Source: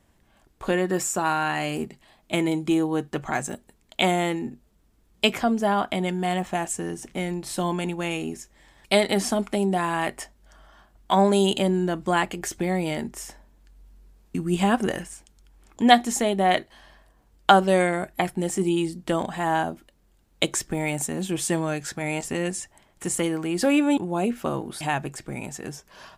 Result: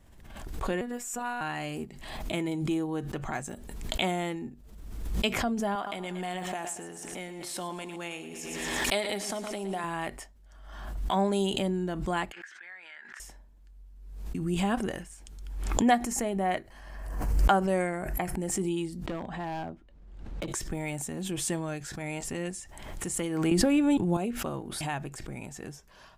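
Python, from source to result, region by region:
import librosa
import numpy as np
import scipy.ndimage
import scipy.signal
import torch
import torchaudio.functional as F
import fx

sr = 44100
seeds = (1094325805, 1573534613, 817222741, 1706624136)

y = fx.chain(x, sr, fx.peak_eq(hz=4900.0, db=-4.0, octaves=0.83),
    fx.robotise(hz=242.0), at=(0.81, 1.41))
y = fx.chain(y, sr, fx.highpass(hz=500.0, slope=6),
    fx.echo_feedback(ms=116, feedback_pct=51, wet_db=-13.0),
    fx.pre_swell(db_per_s=26.0), at=(5.75, 9.84))
y = fx.chain(y, sr, fx.ladder_bandpass(hz=1700.0, resonance_pct=80),
    fx.env_flatten(amount_pct=50), at=(12.32, 13.2))
y = fx.chain(y, sr, fx.peak_eq(hz=3600.0, db=-12.5, octaves=0.44),
    fx.pre_swell(db_per_s=150.0), at=(15.85, 18.52))
y = fx.chain(y, sr, fx.spacing_loss(db_at_10k=21),
    fx.clip_hard(threshold_db=-23.0),
    fx.band_squash(depth_pct=40), at=(19.06, 20.48))
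y = fx.chain(y, sr, fx.low_shelf(hz=250.0, db=10.0),
    fx.band_squash(depth_pct=100), at=(23.51, 24.17))
y = fx.low_shelf(y, sr, hz=76.0, db=12.0)
y = fx.pre_swell(y, sr, db_per_s=43.0)
y = y * 10.0 ** (-8.5 / 20.0)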